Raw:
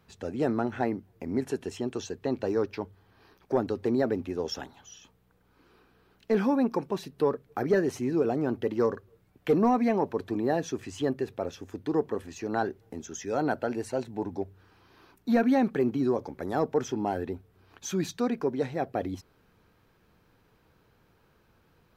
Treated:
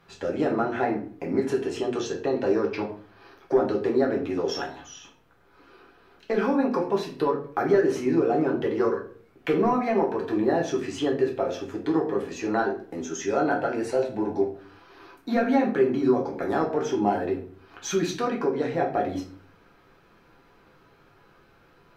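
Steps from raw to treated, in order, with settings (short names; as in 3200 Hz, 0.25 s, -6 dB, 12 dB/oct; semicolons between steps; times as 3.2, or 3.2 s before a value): LPF 3500 Hz 6 dB/oct; low shelf 270 Hz -11 dB; compressor 2:1, threshold -34 dBFS, peak gain reduction 7 dB; reverb RT60 0.45 s, pre-delay 6 ms, DRR -2 dB; gain +7 dB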